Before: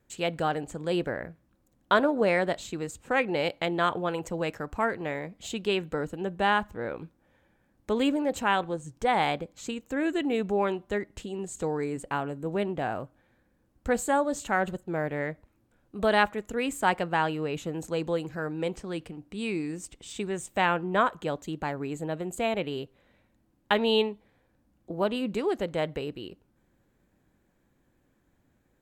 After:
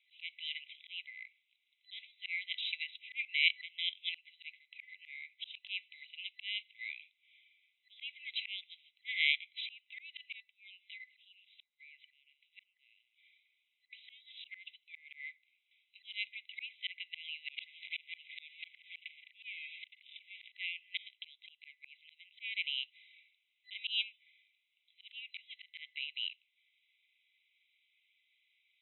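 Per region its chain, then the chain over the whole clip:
10.40–13.93 s: compression 5:1, threshold -42 dBFS + delay 206 ms -22.5 dB
17.47–20.52 s: low-pass 1.7 kHz + waveshaping leveller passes 3 + decay stretcher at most 93 dB/s
whole clip: FFT band-pass 2–4 kHz; slow attack 551 ms; trim +12 dB

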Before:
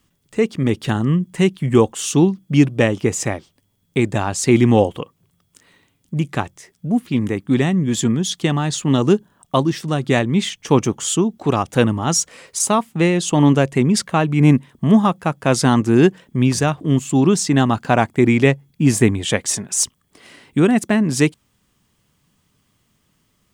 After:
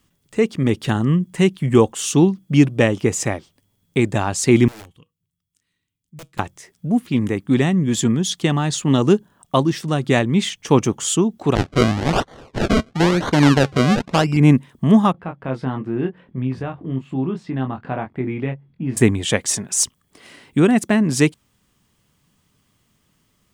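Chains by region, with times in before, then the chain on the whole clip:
4.68–6.39 s: amplifier tone stack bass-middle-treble 6-0-2 + integer overflow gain 31.5 dB + feedback comb 160 Hz, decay 0.2 s, mix 30%
11.55–14.37 s: decimation with a swept rate 34× 1 Hz + low-pass 5.8 kHz
15.12–18.97 s: compression 1.5:1, threshold -37 dBFS + distance through air 440 m + doubling 23 ms -5.5 dB
whole clip: none

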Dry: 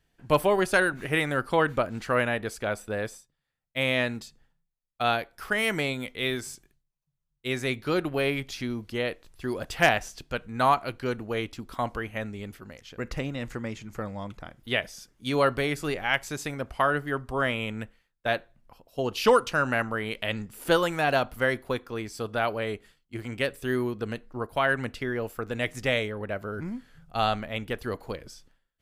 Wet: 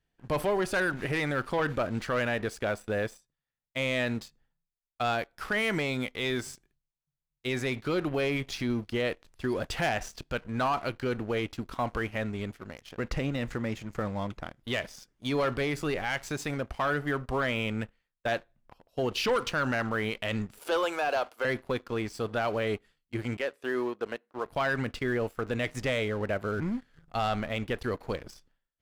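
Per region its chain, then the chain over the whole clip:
20.59–21.45 s: high-pass 370 Hz 24 dB/octave + band-stop 1.9 kHz, Q 5.1
23.37–24.46 s: high-pass 420 Hz + treble shelf 2.9 kHz -10 dB
whole clip: treble shelf 8.8 kHz -11 dB; waveshaping leveller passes 2; peak limiter -16.5 dBFS; trim -4.5 dB

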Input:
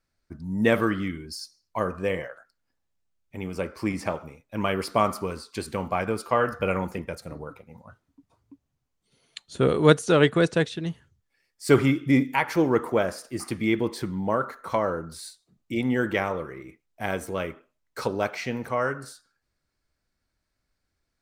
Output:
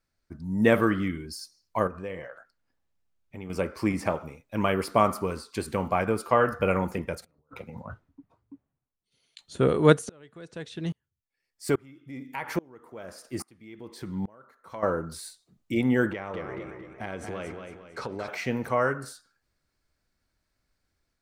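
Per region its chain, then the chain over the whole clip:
1.87–3.50 s: treble shelf 4.8 kHz -8 dB + compression 2:1, threshold -41 dBFS
7.21–9.41 s: treble shelf 4.7 kHz -10.5 dB + compressor with a negative ratio -47 dBFS, ratio -0.5 + three bands expanded up and down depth 100%
10.09–14.83 s: compression 2:1, threshold -25 dBFS + sawtooth tremolo in dB swelling 1.2 Hz, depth 30 dB
16.11–18.28 s: distance through air 73 m + compression 4:1, threshold -33 dBFS + modulated delay 227 ms, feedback 42%, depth 80 cents, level -6 dB
whole clip: dynamic bell 4.6 kHz, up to -5 dB, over -45 dBFS, Q 0.83; level rider gain up to 3.5 dB; trim -2 dB

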